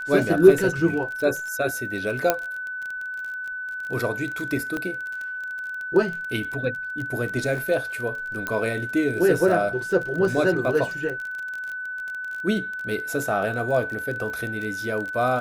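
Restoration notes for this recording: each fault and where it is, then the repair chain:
crackle 30/s -29 dBFS
tone 1500 Hz -29 dBFS
2.3 pop -4 dBFS
4.77 pop -16 dBFS
8.47 pop -13 dBFS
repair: de-click; notch 1500 Hz, Q 30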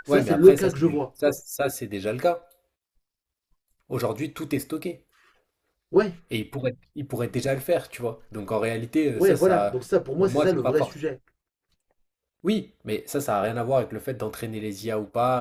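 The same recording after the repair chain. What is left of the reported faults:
4.77 pop

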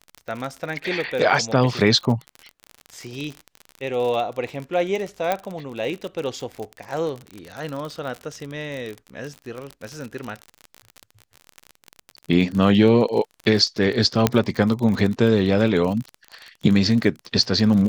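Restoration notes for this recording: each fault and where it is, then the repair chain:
crackle 43/s -27 dBFS
5.32 pop -8 dBFS
14.27 pop -1 dBFS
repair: de-click

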